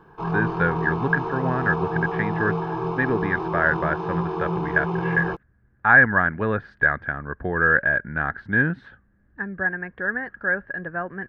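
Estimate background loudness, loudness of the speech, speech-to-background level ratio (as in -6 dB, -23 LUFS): -27.0 LUFS, -23.0 LUFS, 4.0 dB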